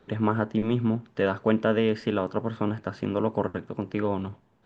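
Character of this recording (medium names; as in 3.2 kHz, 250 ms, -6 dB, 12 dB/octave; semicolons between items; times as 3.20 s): noise floor -63 dBFS; spectral tilt -6.5 dB/octave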